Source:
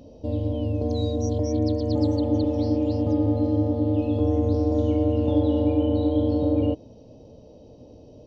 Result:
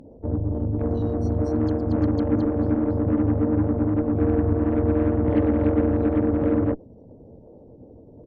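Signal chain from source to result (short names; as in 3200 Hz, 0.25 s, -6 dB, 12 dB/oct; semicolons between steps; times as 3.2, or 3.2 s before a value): formant sharpening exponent 2; added harmonics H 8 -24 dB, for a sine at -10.5 dBFS; harmoniser -5 st -8 dB, +7 st -14 dB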